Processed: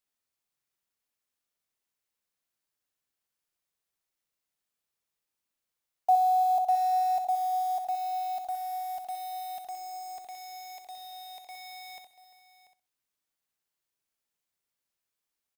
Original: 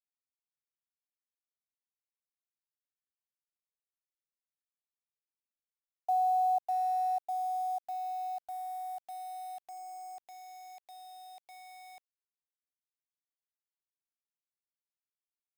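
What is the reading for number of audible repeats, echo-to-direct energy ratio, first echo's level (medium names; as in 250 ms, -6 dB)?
6, -5.0 dB, -6.0 dB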